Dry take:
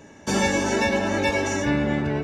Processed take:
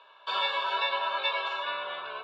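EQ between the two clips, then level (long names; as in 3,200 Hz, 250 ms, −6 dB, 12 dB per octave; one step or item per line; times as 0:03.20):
high-pass with resonance 960 Hz, resonance Q 12
transistor ladder low-pass 4,200 Hz, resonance 60%
phaser with its sweep stopped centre 1,300 Hz, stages 8
+4.5 dB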